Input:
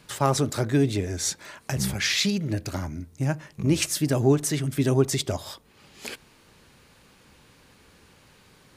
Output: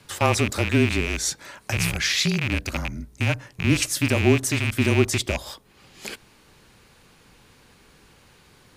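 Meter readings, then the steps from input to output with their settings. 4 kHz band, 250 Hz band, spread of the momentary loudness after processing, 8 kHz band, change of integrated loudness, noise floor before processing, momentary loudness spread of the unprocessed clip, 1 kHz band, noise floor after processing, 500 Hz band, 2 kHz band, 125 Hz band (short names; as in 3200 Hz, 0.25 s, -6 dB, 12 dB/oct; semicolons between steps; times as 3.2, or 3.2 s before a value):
+3.0 dB, +1.0 dB, 16 LU, +1.5 dB, +2.5 dB, -57 dBFS, 16 LU, +2.0 dB, -56 dBFS, +0.5 dB, +8.0 dB, +1.5 dB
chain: rattling part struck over -29 dBFS, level -16 dBFS; frequency shift -26 Hz; gain +1.5 dB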